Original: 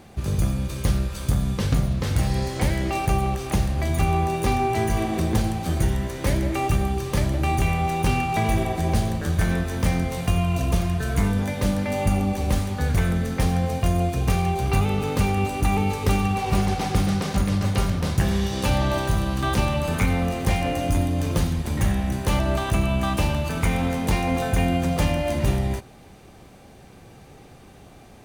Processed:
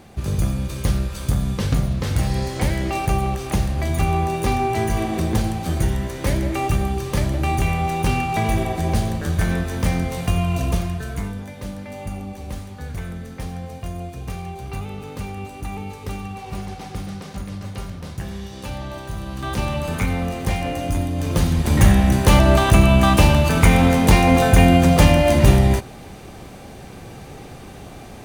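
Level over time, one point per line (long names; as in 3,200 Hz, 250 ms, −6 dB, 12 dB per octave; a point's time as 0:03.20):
0:10.68 +1.5 dB
0:11.45 −9 dB
0:19.03 −9 dB
0:19.71 −0.5 dB
0:21.14 −0.5 dB
0:21.75 +9 dB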